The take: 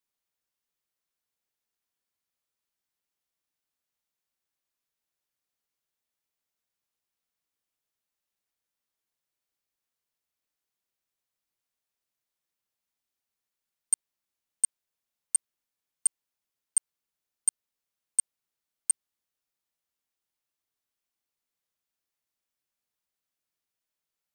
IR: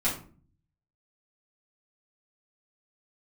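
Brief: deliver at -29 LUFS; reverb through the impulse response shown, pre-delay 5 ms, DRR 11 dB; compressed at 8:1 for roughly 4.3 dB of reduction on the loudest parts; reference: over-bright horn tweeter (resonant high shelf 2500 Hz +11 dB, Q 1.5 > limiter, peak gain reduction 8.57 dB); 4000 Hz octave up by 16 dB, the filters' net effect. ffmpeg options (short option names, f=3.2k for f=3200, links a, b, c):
-filter_complex "[0:a]equalizer=f=4k:t=o:g=4,acompressor=threshold=-23dB:ratio=8,asplit=2[a][b];[1:a]atrim=start_sample=2205,adelay=5[c];[b][c]afir=irnorm=-1:irlink=0,volume=-20dB[d];[a][d]amix=inputs=2:normalize=0,highshelf=f=2.5k:t=q:w=1.5:g=11,volume=-1dB,alimiter=limit=-11dB:level=0:latency=1"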